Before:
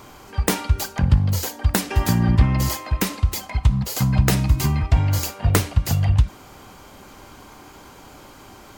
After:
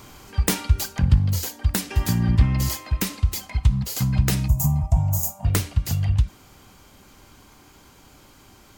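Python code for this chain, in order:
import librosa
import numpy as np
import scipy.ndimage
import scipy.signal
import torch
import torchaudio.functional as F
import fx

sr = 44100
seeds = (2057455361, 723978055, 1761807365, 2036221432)

y = fx.peak_eq(x, sr, hz=710.0, db=-7.0, octaves=2.8)
y = fx.rider(y, sr, range_db=5, speed_s=2.0)
y = fx.curve_eq(y, sr, hz=(110.0, 170.0, 440.0, 630.0, 920.0, 1600.0, 4400.0, 6800.0, 9700.0, 14000.0), db=(0, 7, -22, 9, 4, -17, -16, 5, 3, 8), at=(4.48, 5.45))
y = y * 10.0 ** (-1.5 / 20.0)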